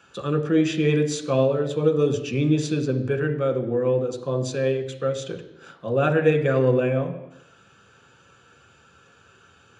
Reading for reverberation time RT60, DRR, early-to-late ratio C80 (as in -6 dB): 0.85 s, 3.5 dB, 12.0 dB